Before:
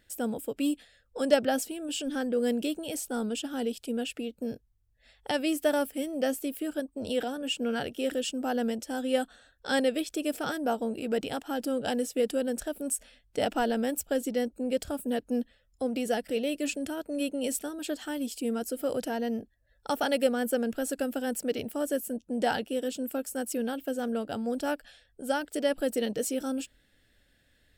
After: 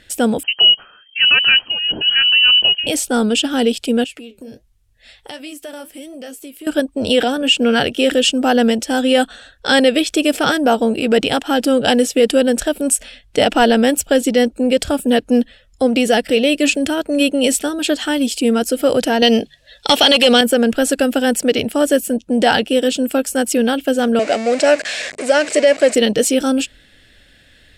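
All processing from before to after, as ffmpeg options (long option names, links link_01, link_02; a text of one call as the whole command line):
ffmpeg -i in.wav -filter_complex "[0:a]asettb=1/sr,asplit=3[link_01][link_02][link_03];[link_01]atrim=end=0.434[link_04];[link_02]atrim=start=0.43:end=2.87,asetpts=PTS-STARTPTS,afade=type=in:duration=0.004:curve=qsin,afade=type=out:start_time=2.436:duration=0.004:curve=qsin,equalizer=frequency=490:width=1.1:gain=-8.5,lowpass=frequency=2700:width_type=q:width=0.5098,lowpass=frequency=2700:width_type=q:width=0.6013,lowpass=frequency=2700:width_type=q:width=0.9,lowpass=frequency=2700:width_type=q:width=2.563,afreqshift=-3200[link_05];[link_03]atrim=start=2.866[link_06];[link_04][link_05]acrossfade=duration=0.004:curve1=hsin:curve2=qsin[link_07];[link_07][link_06]acrossfade=duration=0.004:curve1=qsin:curve2=hsin,asettb=1/sr,asplit=3[link_08][link_09][link_10];[link_08]atrim=end=4.044[link_11];[link_09]atrim=start=4.04:end=6.67,asetpts=PTS-STARTPTS,afade=type=in:duration=0.004:curve=qsin,afade=type=out:start_time=2.626:duration=0.004:curve=qsin,highshelf=frequency=6900:gain=9.5,flanger=delay=3.7:depth=8.5:regen=-59:speed=1.4:shape=triangular,acompressor=threshold=-51dB:ratio=3:attack=3.2:release=140:knee=1:detection=peak[link_12];[link_10]atrim=start=6.666[link_13];[link_11][link_12]acrossfade=duration=0.004:curve1=hsin:curve2=qsin[link_14];[link_14][link_13]acrossfade=duration=0.004:curve1=qsin:curve2=hsin,asettb=1/sr,asplit=3[link_15][link_16][link_17];[link_15]atrim=end=19.224[link_18];[link_16]atrim=start=19.22:end=20.41,asetpts=PTS-STARTPTS,afade=type=in:duration=0.004:curve=qsin,afade=type=out:start_time=1.186:duration=0.004:curve=qsin,highshelf=frequency=2300:width_type=q:width=1.5:gain=12.5,bandreject=frequency=72.99:width_type=h:width=4,bandreject=frequency=145.98:width_type=h:width=4,asplit=2[link_19][link_20];[link_20]highpass=frequency=720:poles=1,volume=17dB,asoftclip=type=tanh:threshold=-5dB[link_21];[link_19][link_21]amix=inputs=2:normalize=0,lowpass=frequency=1500:poles=1,volume=-6dB[link_22];[link_17]atrim=start=20.406[link_23];[link_18][link_22]acrossfade=duration=0.004:curve1=hsin:curve2=qsin[link_24];[link_24][link_23]acrossfade=duration=0.004:curve1=qsin:curve2=hsin,asettb=1/sr,asplit=3[link_25][link_26][link_27];[link_25]atrim=end=24.194[link_28];[link_26]atrim=start=24.19:end=25.95,asetpts=PTS-STARTPTS,afade=type=in:duration=0.004:curve=qsin,afade=type=out:start_time=1.756:duration=0.004:curve=qsin,aeval=exprs='val(0)+0.5*0.0158*sgn(val(0))':channel_layout=same,aeval=exprs='val(0)+0.00316*(sin(2*PI*50*n/s)+sin(2*PI*2*50*n/s)/2+sin(2*PI*3*50*n/s)/3+sin(2*PI*4*50*n/s)/4+sin(2*PI*5*50*n/s)/5)':channel_layout=same,highpass=390,equalizer=frequency=620:width_type=q:width=4:gain=8,equalizer=frequency=900:width_type=q:width=4:gain=-8,equalizer=frequency=1300:width_type=q:width=4:gain=-5,equalizer=frequency=2200:width_type=q:width=4:gain=6,equalizer=frequency=3300:width_type=q:width=4:gain=-8,equalizer=frequency=7500:width_type=q:width=4:gain=4,lowpass=frequency=8600:width=0.5412,lowpass=frequency=8600:width=1.3066[link_29];[link_27]atrim=start=25.946[link_30];[link_28][link_29]acrossfade=duration=0.004:curve1=hsin:curve2=qsin[link_31];[link_31][link_30]acrossfade=duration=0.004:curve1=qsin:curve2=hsin,lowpass=11000,equalizer=frequency=2900:width=1:gain=5.5,alimiter=level_in=17.5dB:limit=-1dB:release=50:level=0:latency=1,volume=-2dB" out.wav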